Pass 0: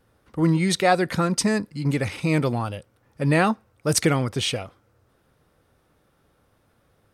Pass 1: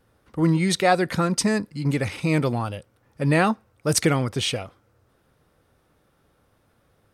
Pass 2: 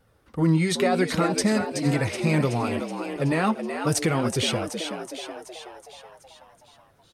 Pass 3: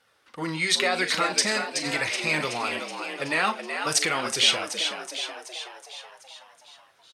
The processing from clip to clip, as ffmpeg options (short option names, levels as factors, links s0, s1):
-af anull
-filter_complex "[0:a]alimiter=limit=0.2:level=0:latency=1:release=54,flanger=delay=1.4:depth=6.3:regen=-43:speed=0.66:shape=sinusoidal,asplit=8[s0][s1][s2][s3][s4][s5][s6][s7];[s1]adelay=375,afreqshift=79,volume=0.422[s8];[s2]adelay=750,afreqshift=158,volume=0.245[s9];[s3]adelay=1125,afreqshift=237,volume=0.141[s10];[s4]adelay=1500,afreqshift=316,volume=0.0822[s11];[s5]adelay=1875,afreqshift=395,volume=0.0479[s12];[s6]adelay=2250,afreqshift=474,volume=0.0275[s13];[s7]adelay=2625,afreqshift=553,volume=0.016[s14];[s0][s8][s9][s10][s11][s12][s13][s14]amix=inputs=8:normalize=0,volume=1.58"
-filter_complex "[0:a]bandpass=f=3500:t=q:w=0.61:csg=0,asplit=2[s0][s1];[s1]adelay=39,volume=0.251[s2];[s0][s2]amix=inputs=2:normalize=0,volume=2.37"